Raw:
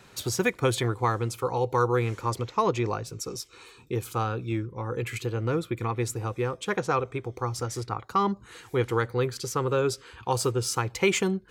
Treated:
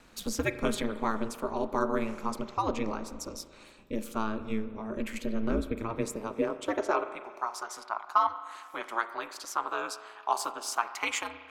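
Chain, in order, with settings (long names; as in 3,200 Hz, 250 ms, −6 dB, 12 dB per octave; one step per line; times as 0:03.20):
high-pass filter sweep 64 Hz → 920 Hz, 0:04.80–0:07.37
spring reverb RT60 1.7 s, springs 37 ms, chirp 45 ms, DRR 11 dB
ring modulation 110 Hz
level −2.5 dB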